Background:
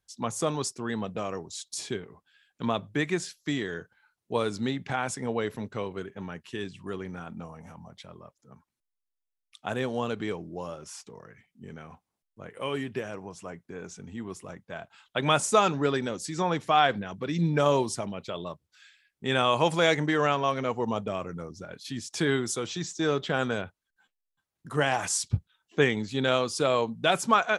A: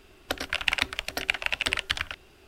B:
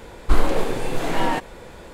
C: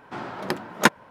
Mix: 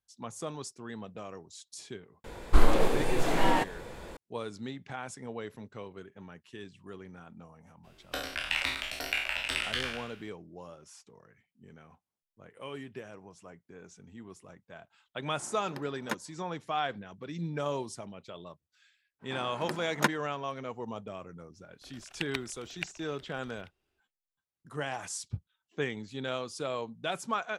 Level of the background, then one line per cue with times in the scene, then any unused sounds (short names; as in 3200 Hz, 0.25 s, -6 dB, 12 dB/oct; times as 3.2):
background -10 dB
2.24 add B -3.5 dB
7.83 add A -9.5 dB, fades 0.02 s + spectral trails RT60 0.76 s
15.26 add C -17.5 dB
19.19 add C -9 dB, fades 0.05 s
21.53 add A -9 dB + level quantiser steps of 24 dB